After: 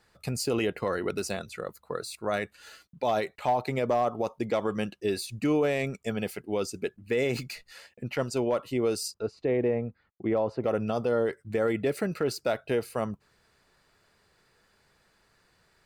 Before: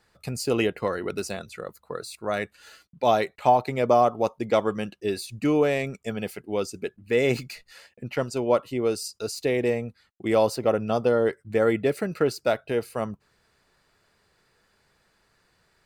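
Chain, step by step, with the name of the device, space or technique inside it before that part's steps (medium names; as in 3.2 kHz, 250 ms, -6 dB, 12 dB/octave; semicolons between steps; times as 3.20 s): 9.14–10.64 s: Bessel low-pass 1.3 kHz, order 2; clipper into limiter (hard clipper -11 dBFS, distortion -28 dB; peak limiter -18 dBFS, peak gain reduction 7 dB)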